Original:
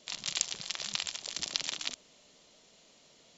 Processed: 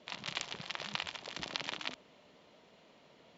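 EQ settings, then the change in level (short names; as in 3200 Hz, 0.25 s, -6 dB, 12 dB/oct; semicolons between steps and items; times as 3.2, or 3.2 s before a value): HPF 61 Hz; LPF 2300 Hz 12 dB/oct; bell 930 Hz +3 dB 0.21 oct; +3.5 dB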